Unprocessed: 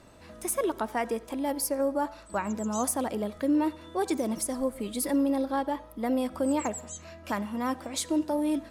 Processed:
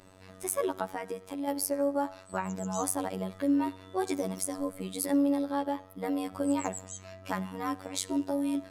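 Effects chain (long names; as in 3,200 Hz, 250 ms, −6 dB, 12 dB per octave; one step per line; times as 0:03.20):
0:00.84–0:01.48: downward compressor 3 to 1, threshold −32 dBFS, peak gain reduction 6.5 dB
phases set to zero 94.1 Hz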